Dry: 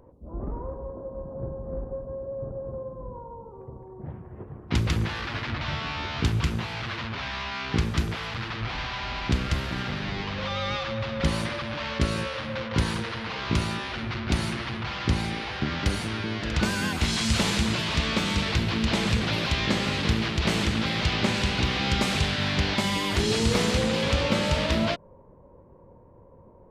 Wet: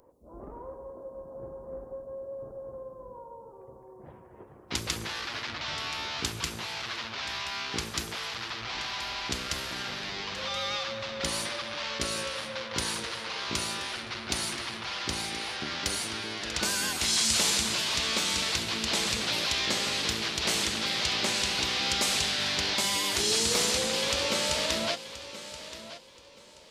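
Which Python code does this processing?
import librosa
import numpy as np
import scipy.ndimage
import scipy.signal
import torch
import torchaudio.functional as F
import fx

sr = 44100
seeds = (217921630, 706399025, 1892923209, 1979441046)

y = fx.bass_treble(x, sr, bass_db=-13, treble_db=13)
y = fx.echo_feedback(y, sr, ms=1027, feedback_pct=25, wet_db=-14)
y = y * librosa.db_to_amplitude(-4.0)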